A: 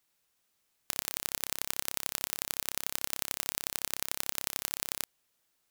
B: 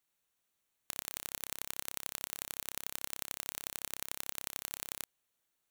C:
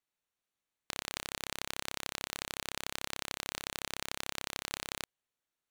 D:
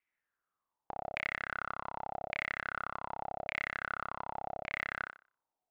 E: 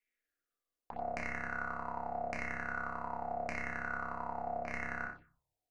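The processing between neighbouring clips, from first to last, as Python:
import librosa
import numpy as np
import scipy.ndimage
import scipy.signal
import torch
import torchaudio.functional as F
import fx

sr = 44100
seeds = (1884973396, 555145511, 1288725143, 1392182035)

y1 = fx.notch(x, sr, hz=5000.0, q=6.3)
y1 = F.gain(torch.from_numpy(y1), -6.0).numpy()
y2 = fx.high_shelf(y1, sr, hz=9000.0, db=-11.5)
y2 = fx.leveller(y2, sr, passes=3)
y2 = F.gain(torch.from_numpy(y2), 1.0).numpy()
y3 = fx.filter_lfo_lowpass(y2, sr, shape='saw_down', hz=0.86, low_hz=610.0, high_hz=2300.0, q=6.4)
y3 = fx.echo_thinned(y3, sr, ms=61, feedback_pct=29, hz=190.0, wet_db=-6)
y3 = F.gain(torch.from_numpy(y3), -3.0).numpy()
y4 = fx.tracing_dist(y3, sr, depth_ms=0.034)
y4 = fx.room_shoebox(y4, sr, seeds[0], volume_m3=260.0, walls='furnished', distance_m=1.8)
y4 = fx.env_phaser(y4, sr, low_hz=160.0, high_hz=3400.0, full_db=-34.0)
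y4 = F.gain(torch.from_numpy(y4), -1.5).numpy()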